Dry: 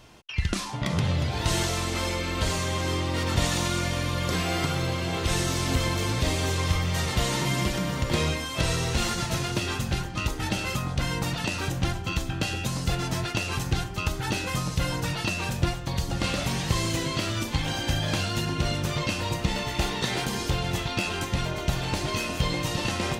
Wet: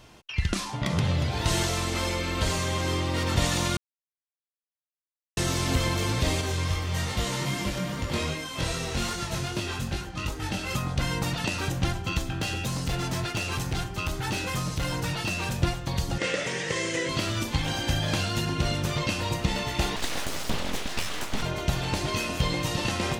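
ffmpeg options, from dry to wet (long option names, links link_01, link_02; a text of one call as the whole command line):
ffmpeg -i in.wav -filter_complex "[0:a]asettb=1/sr,asplit=3[link_01][link_02][link_03];[link_01]atrim=end=6.414[link_04];[link_02]atrim=start=6.41:end=10.71,asetpts=PTS-STARTPTS,afade=type=in:duration=0.004:curve=qsin,afade=type=out:start_time=4.296:duration=0.004:curve=qsin,flanger=delay=19.5:depth=2.7:speed=2.5[link_05];[link_03]atrim=start=10.706[link_06];[link_04][link_05]acrossfade=duration=0.004:curve1=hsin:curve2=qsin[link_07];[link_07][link_06]acrossfade=duration=0.004:curve1=qsin:curve2=hsin,asettb=1/sr,asplit=3[link_08][link_09][link_10];[link_08]atrim=end=12.204[link_11];[link_09]atrim=start=12.2:end=15.51,asetpts=PTS-STARTPTS,afade=type=in:duration=0.004:curve=qsin,afade=type=out:start_time=3.306:duration=0.004:curve=qsin,volume=24dB,asoftclip=hard,volume=-24dB[link_12];[link_10]atrim=start=15.506[link_13];[link_11][link_12]acrossfade=duration=0.004:curve1=hsin:curve2=qsin[link_14];[link_14][link_13]acrossfade=duration=0.004:curve1=qsin:curve2=hsin,asettb=1/sr,asplit=3[link_15][link_16][link_17];[link_15]atrim=end=16.184[link_18];[link_16]atrim=start=16.18:end=17.09,asetpts=PTS-STARTPTS,afade=type=in:duration=0.004:curve=qsin,afade=type=out:start_time=0.906:duration=0.004:curve=qsin,highpass=220,equalizer=frequency=240:width_type=q:width=4:gain=-9,equalizer=frequency=480:width_type=q:width=4:gain=10,equalizer=frequency=760:width_type=q:width=4:gain=-7,equalizer=frequency=1100:width_type=q:width=4:gain=-5,equalizer=frequency=1900:width_type=q:width=4:gain=9,equalizer=frequency=4200:width_type=q:width=4:gain=-7,lowpass=frequency=8500:width=0.5412,lowpass=frequency=8500:width=1.3066[link_19];[link_17]atrim=start=17.086[link_20];[link_18][link_19]acrossfade=duration=0.004:curve1=hsin:curve2=qsin[link_21];[link_21][link_20]acrossfade=duration=0.004:curve1=qsin:curve2=hsin,asettb=1/sr,asplit=3[link_22][link_23][link_24];[link_22]atrim=end=19.964[link_25];[link_23]atrim=start=19.96:end=21.43,asetpts=PTS-STARTPTS,afade=type=in:duration=0.004:curve=qsin,afade=type=out:start_time=1.466:duration=0.004:curve=qsin,aeval=exprs='abs(val(0))':channel_layout=same[link_26];[link_24]atrim=start=21.426[link_27];[link_25][link_26]acrossfade=duration=0.004:curve1=hsin:curve2=qsin[link_28];[link_28][link_27]acrossfade=duration=0.004:curve1=qsin:curve2=hsin,asplit=3[link_29][link_30][link_31];[link_29]atrim=end=3.77,asetpts=PTS-STARTPTS,afade=type=out:start_time=3.766:duration=0.004:curve=hsin[link_32];[link_30]atrim=start=3.77:end=5.37,asetpts=PTS-STARTPTS,volume=0[link_33];[link_31]atrim=start=5.37,asetpts=PTS-STARTPTS,afade=type=in:duration=0.004:curve=hsin[link_34];[link_32][link_33][link_34]concat=n=3:v=0:a=1" out.wav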